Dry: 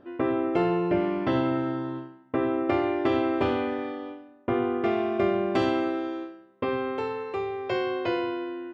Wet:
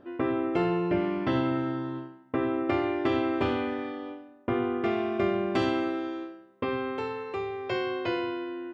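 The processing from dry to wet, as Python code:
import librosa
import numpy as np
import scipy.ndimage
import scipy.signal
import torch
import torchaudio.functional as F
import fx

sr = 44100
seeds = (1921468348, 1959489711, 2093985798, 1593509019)

y = fx.dynamic_eq(x, sr, hz=590.0, q=0.9, threshold_db=-37.0, ratio=4.0, max_db=-4)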